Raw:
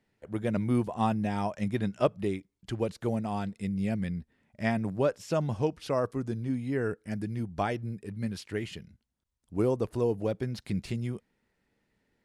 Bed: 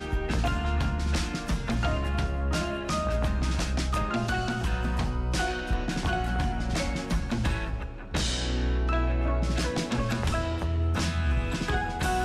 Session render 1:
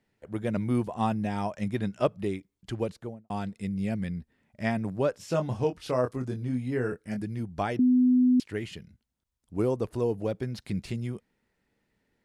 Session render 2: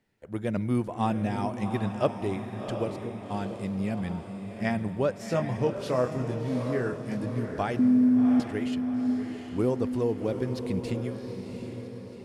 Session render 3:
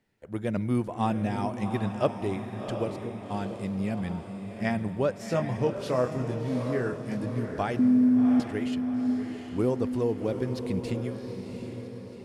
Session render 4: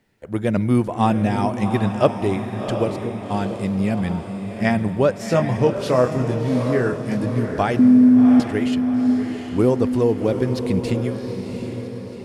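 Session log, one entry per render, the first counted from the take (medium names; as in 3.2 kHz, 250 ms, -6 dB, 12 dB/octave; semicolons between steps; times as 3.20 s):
2.81–3.30 s: studio fade out; 5.17–7.22 s: doubling 24 ms -6 dB; 7.79–8.40 s: bleep 251 Hz -17.5 dBFS
echo that smears into a reverb 739 ms, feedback 51%, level -7 dB; spring tank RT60 3 s, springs 48 ms, chirp 55 ms, DRR 18.5 dB
no audible change
trim +9 dB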